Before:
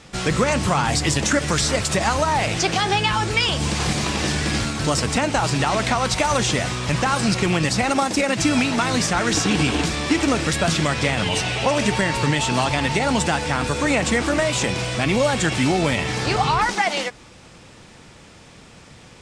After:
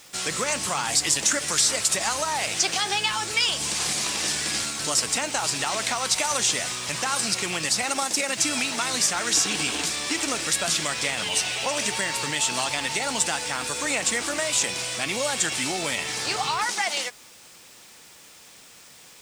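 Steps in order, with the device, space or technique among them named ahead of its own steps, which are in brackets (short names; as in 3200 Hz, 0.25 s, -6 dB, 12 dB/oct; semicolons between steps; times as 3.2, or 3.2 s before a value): turntable without a phono preamp (RIAA curve recording; white noise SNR 29 dB); gain -7 dB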